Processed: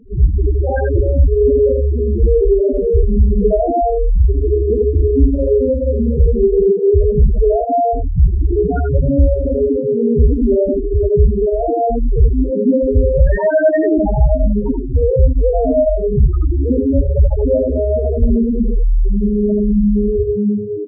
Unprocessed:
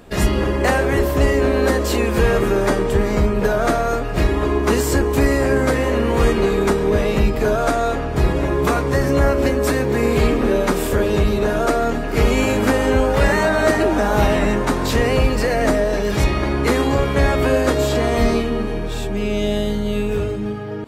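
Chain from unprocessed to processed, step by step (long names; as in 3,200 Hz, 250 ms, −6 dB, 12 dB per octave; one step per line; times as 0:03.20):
spectral peaks only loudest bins 2
spectral tilt −1.5 dB per octave
downward compressor, threshold −13 dBFS, peak gain reduction 7 dB
single-tap delay 82 ms −4.5 dB
level +6 dB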